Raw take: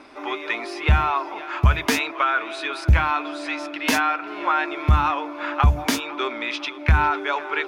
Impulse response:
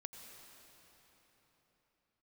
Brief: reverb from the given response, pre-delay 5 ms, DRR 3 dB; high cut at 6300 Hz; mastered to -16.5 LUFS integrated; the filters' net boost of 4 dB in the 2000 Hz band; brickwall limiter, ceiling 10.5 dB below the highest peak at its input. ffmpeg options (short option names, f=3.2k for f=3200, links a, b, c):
-filter_complex "[0:a]lowpass=6.3k,equalizer=f=2k:t=o:g=5.5,alimiter=limit=-15dB:level=0:latency=1,asplit=2[a][b];[1:a]atrim=start_sample=2205,adelay=5[c];[b][c]afir=irnorm=-1:irlink=0,volume=1dB[d];[a][d]amix=inputs=2:normalize=0,volume=7.5dB"